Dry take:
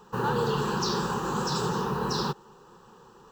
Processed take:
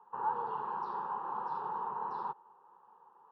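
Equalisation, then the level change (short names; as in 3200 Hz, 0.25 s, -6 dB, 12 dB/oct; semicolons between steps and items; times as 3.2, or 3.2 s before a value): band-pass 910 Hz, Q 4.4; air absorption 270 m; 0.0 dB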